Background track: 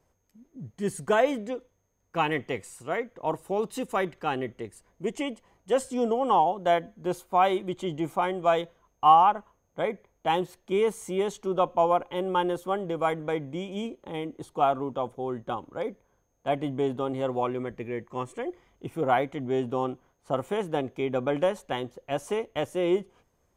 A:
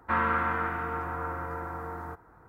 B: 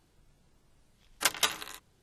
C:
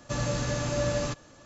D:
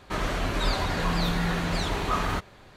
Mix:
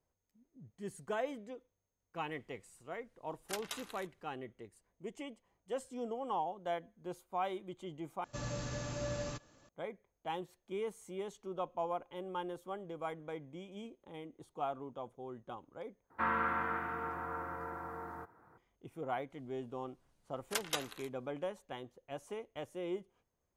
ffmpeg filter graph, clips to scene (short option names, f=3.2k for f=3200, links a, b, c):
-filter_complex "[2:a]asplit=2[a][b];[0:a]volume=-14.5dB[c];[a]alimiter=limit=-12.5dB:level=0:latency=1:release=62[d];[1:a]highpass=120[e];[c]asplit=3[f][g][h];[f]atrim=end=8.244[i];[3:a]atrim=end=1.45,asetpts=PTS-STARTPTS,volume=-11dB[j];[g]atrim=start=9.686:end=16.104[k];[e]atrim=end=2.48,asetpts=PTS-STARTPTS,volume=-6.5dB[l];[h]atrim=start=18.576[m];[d]atrim=end=2.02,asetpts=PTS-STARTPTS,volume=-11.5dB,afade=t=in:d=0.004:c=hsin,afade=t=out:st=2.016:d=0.004:c=hsin,adelay=2280[n];[b]atrim=end=2.02,asetpts=PTS-STARTPTS,volume=-10dB,afade=t=in:d=0.004:c=hsin,afade=t=out:st=2.016:d=0.004:c=hsin,adelay=19300[o];[i][j]acrossfade=d=0.004:c1=hsin:c2=hsin[p];[p][k]acrossfade=d=0.004:c1=hsin:c2=hsin[q];[q][l]acrossfade=d=0.004:c1=hsin:c2=hsin[r];[r][m]acrossfade=d=0.004:c1=hsin:c2=hsin[s];[s][n][o]amix=inputs=3:normalize=0"